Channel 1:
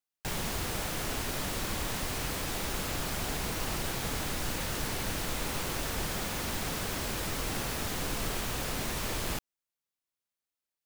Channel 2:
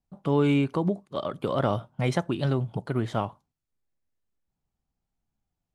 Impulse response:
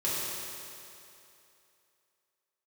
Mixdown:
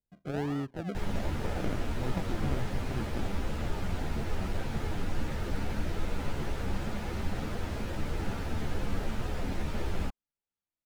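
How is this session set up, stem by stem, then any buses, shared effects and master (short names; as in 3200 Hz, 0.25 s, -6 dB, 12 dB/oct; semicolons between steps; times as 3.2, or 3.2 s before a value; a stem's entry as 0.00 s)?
+2.0 dB, 0.70 s, no send, low shelf 200 Hz +6.5 dB; ensemble effect
-10.0 dB, 0.00 s, no send, decimation with a swept rate 39×, swing 60% 1.3 Hz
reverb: off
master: LPF 1400 Hz 6 dB/oct; notch 1100 Hz, Q 12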